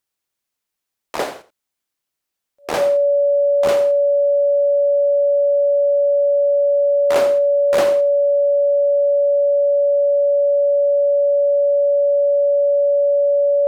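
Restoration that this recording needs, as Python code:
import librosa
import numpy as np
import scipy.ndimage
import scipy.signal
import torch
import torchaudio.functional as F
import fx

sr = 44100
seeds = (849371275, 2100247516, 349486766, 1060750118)

y = fx.fix_declip(x, sr, threshold_db=-8.5)
y = fx.notch(y, sr, hz=570.0, q=30.0)
y = fx.fix_echo_inverse(y, sr, delay_ms=84, level_db=-15.0)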